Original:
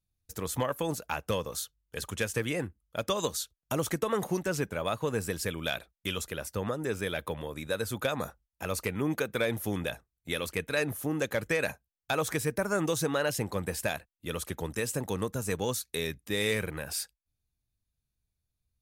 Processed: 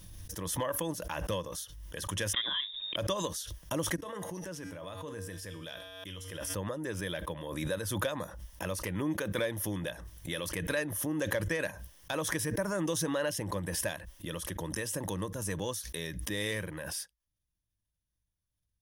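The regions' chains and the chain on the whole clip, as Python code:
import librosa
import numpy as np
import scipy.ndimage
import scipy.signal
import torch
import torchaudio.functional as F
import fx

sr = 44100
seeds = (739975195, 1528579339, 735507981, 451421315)

y = fx.chain(x, sr, fx.freq_invert(carrier_hz=3700),
    fx.band_squash(depth_pct=40), at=(2.33, 2.96))
y = fx.chain(y, sr, fx.comb_fb(f0_hz=94.0, decay_s=0.61, harmonics='odd', damping=0.0, mix_pct=70),
    fx.sustainer(db_per_s=25.0), at=(3.96, 6.55))
y = fx.ripple_eq(y, sr, per_octave=1.2, db=8)
y = fx.pre_swell(y, sr, db_per_s=34.0)
y = y * 10.0 ** (-5.5 / 20.0)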